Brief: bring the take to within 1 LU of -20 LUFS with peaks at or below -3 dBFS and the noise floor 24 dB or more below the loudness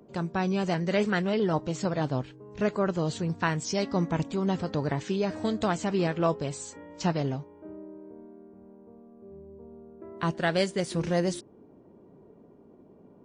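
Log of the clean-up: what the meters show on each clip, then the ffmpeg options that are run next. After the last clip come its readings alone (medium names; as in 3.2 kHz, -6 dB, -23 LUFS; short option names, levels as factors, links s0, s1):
loudness -29.0 LUFS; peak level -12.5 dBFS; loudness target -20.0 LUFS
-> -af "volume=2.82"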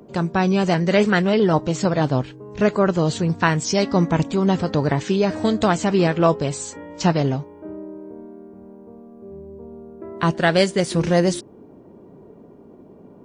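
loudness -20.0 LUFS; peak level -3.5 dBFS; noise floor -46 dBFS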